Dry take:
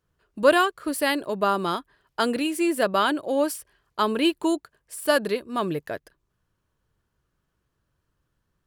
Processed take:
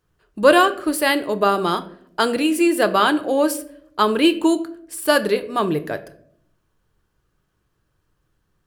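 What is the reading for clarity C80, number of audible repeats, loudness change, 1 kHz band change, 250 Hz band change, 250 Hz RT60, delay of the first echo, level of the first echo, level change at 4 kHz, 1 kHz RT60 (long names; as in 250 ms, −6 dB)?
19.0 dB, no echo audible, +5.5 dB, +5.5 dB, +6.0 dB, 0.95 s, no echo audible, no echo audible, +5.0 dB, 0.55 s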